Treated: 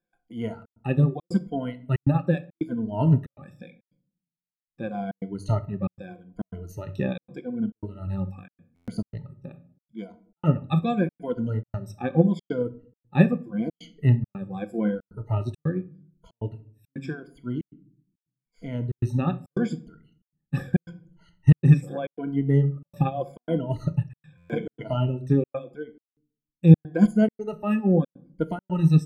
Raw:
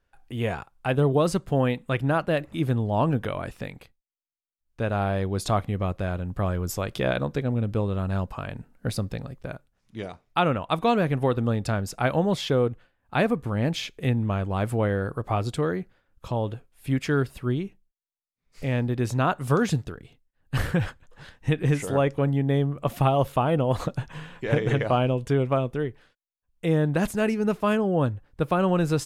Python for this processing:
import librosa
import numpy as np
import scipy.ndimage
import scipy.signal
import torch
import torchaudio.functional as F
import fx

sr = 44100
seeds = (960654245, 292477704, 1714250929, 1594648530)

y = fx.spec_ripple(x, sr, per_octave=1.8, drift_hz=-0.82, depth_db=22)
y = fx.peak_eq(y, sr, hz=210.0, db=13.5, octaves=2.0)
y = fx.dereverb_blind(y, sr, rt60_s=1.6)
y = fx.high_shelf(y, sr, hz=11000.0, db=-8.5)
y = fx.notch(y, sr, hz=1100.0, q=6.7)
y = fx.room_shoebox(y, sr, seeds[0], volume_m3=560.0, walls='furnished', distance_m=0.82)
y = fx.step_gate(y, sr, bpm=138, pattern='xxxxxx.xxxx.', floor_db=-60.0, edge_ms=4.5)
y = fx.buffer_glitch(y, sr, at_s=(8.75, 24.37, 26.04), block=512, repeats=10)
y = fx.upward_expand(y, sr, threshold_db=-22.0, expansion=1.5)
y = y * 10.0 ** (-7.5 / 20.0)